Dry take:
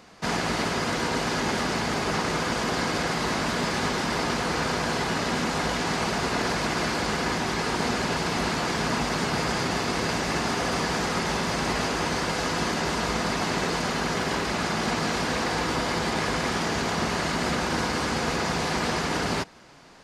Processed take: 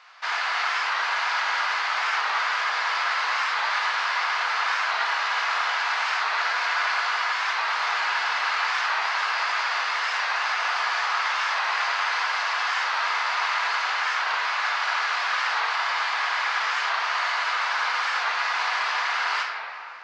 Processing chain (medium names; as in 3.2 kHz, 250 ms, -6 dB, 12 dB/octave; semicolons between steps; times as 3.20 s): high-pass 1 kHz 24 dB/octave; in parallel at -1 dB: peak limiter -22 dBFS, peak gain reduction 6.5 dB; 7.78–8.55 s: on the sum: added noise white -54 dBFS; distance through air 190 m; simulated room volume 130 m³, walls hard, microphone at 0.42 m; warped record 45 rpm, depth 100 cents